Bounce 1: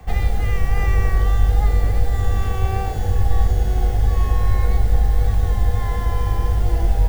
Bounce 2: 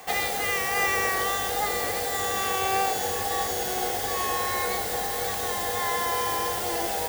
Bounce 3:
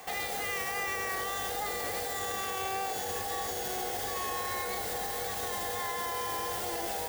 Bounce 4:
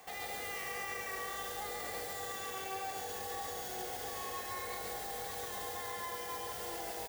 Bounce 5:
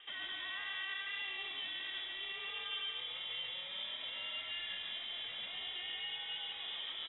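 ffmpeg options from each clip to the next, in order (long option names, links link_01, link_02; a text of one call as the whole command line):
ffmpeg -i in.wav -af "highpass=420,highshelf=frequency=3400:gain=10.5,volume=3.5dB" out.wav
ffmpeg -i in.wav -af "alimiter=limit=-22dB:level=0:latency=1,volume=-3dB" out.wav
ffmpeg -i in.wav -af "aecho=1:1:138:0.708,volume=-8.5dB" out.wav
ffmpeg -i in.wav -af "lowpass=frequency=3300:width_type=q:width=0.5098,lowpass=frequency=3300:width_type=q:width=0.6013,lowpass=frequency=3300:width_type=q:width=0.9,lowpass=frequency=3300:width_type=q:width=2.563,afreqshift=-3900" out.wav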